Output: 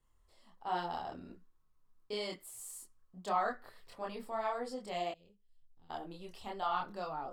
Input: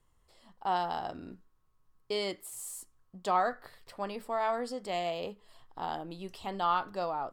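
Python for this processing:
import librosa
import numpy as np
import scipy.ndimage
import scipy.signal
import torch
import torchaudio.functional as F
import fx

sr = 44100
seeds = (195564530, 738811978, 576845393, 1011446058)

y = fx.tone_stack(x, sr, knobs='10-0-1', at=(5.11, 5.9))
y = fx.chorus_voices(y, sr, voices=6, hz=1.1, base_ms=26, depth_ms=3.0, mix_pct=50)
y = F.gain(torch.from_numpy(y), -2.0).numpy()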